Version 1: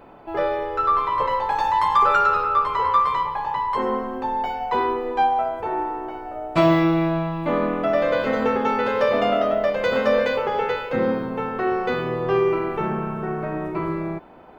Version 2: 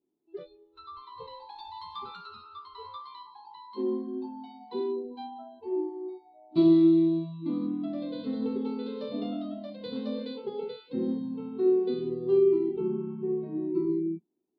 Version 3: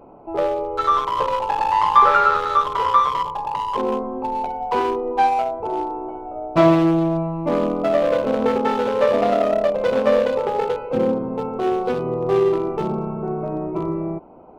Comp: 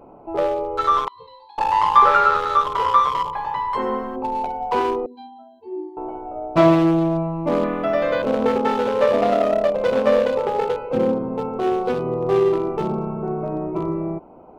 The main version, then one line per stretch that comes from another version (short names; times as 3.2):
3
1.08–1.58 from 2
3.33–4.16 from 1
5.06–5.97 from 2
7.64–8.22 from 1